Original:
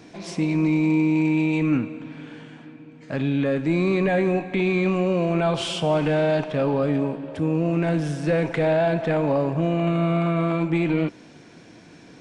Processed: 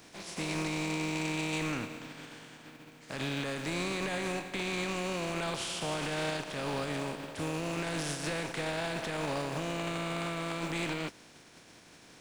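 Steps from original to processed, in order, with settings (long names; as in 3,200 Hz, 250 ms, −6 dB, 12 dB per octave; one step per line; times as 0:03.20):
compressing power law on the bin magnitudes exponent 0.5
brickwall limiter −16 dBFS, peak gain reduction 8.5 dB
level −8.5 dB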